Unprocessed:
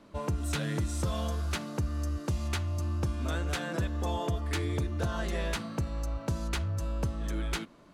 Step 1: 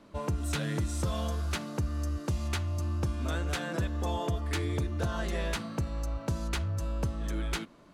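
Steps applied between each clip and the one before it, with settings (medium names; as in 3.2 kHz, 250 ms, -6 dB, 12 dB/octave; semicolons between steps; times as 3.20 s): no audible change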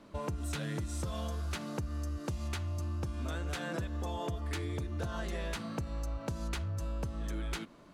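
compression, threshold -33 dBFS, peak gain reduction 7.5 dB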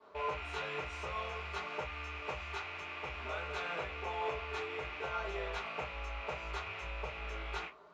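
rattle on loud lows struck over -48 dBFS, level -27 dBFS; band-pass filter 1.3 kHz, Q 1.3; reverberation, pre-delay 3 ms, DRR -12.5 dB; trim -8.5 dB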